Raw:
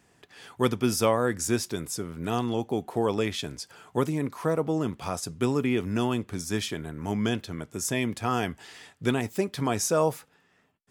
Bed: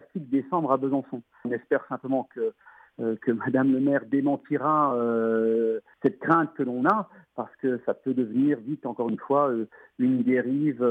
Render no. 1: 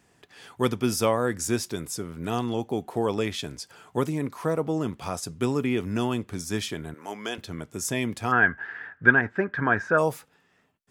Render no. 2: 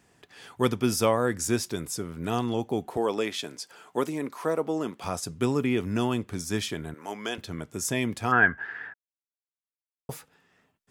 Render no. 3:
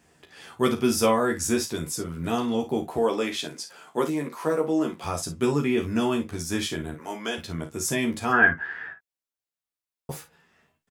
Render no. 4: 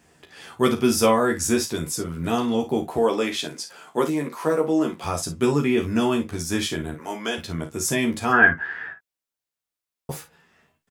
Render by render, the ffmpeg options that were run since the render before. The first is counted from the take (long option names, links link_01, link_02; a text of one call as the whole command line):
ffmpeg -i in.wav -filter_complex "[0:a]asettb=1/sr,asplit=3[link_01][link_02][link_03];[link_01]atrim=end=6.944[link_04];[link_02]atrim=start=6.94:end=7.38,asetpts=PTS-STARTPTS,afade=type=in:duration=0.004:curve=qsin,afade=type=out:start_time=0.436:duration=0.004:curve=qsin,highpass=480[link_05];[link_03]atrim=start=7.376[link_06];[link_04][link_05]acrossfade=duration=0.004:curve1=hsin:curve2=qsin[link_07];[link_07][link_06]acrossfade=duration=0.004:curve1=qsin:curve2=hsin,asplit=3[link_08][link_09][link_10];[link_08]afade=type=out:start_time=8.31:duration=0.02[link_11];[link_09]lowpass=frequency=1600:width_type=q:width=14,afade=type=in:start_time=8.31:duration=0.02,afade=type=out:start_time=9.97:duration=0.02[link_12];[link_10]afade=type=in:start_time=9.97:duration=0.02[link_13];[link_11][link_12][link_13]amix=inputs=3:normalize=0" out.wav
ffmpeg -i in.wav -filter_complex "[0:a]asettb=1/sr,asplit=3[link_01][link_02][link_03];[link_01]atrim=end=2.974[link_04];[link_02]atrim=start=2.97:end=5.04,asetpts=PTS-STARTPTS,afade=type=in:duration=0.004:curve=qsin,afade=type=out:start_time=2.066:duration=0.004:curve=qsin,highpass=260[link_05];[link_03]atrim=start=5.036[link_06];[link_04][link_05]acrossfade=duration=0.004:curve1=hsin:curve2=qsin[link_07];[link_07][link_06]acrossfade=duration=0.004:curve1=qsin:curve2=hsin,asplit=3[link_08][link_09][link_10];[link_08]atrim=end=8.94,asetpts=PTS-STARTPTS,afade=type=out:start_time=8.936:duration=0.004:curve=hsin[link_11];[link_09]atrim=start=8.94:end=10.09,asetpts=PTS-STARTPTS,volume=0[link_12];[link_10]atrim=start=10.09,asetpts=PTS-STARTPTS,afade=type=in:duration=0.004:curve=hsin[link_13];[link_11][link_12][link_13]concat=n=3:v=0:a=1" out.wav
ffmpeg -i in.wav -filter_complex "[0:a]asplit=2[link_01][link_02];[link_02]adelay=13,volume=-3dB[link_03];[link_01][link_03]amix=inputs=2:normalize=0,asplit=2[link_04][link_05];[link_05]aecho=0:1:35|54:0.299|0.237[link_06];[link_04][link_06]amix=inputs=2:normalize=0" out.wav
ffmpeg -i in.wav -af "volume=3dB" out.wav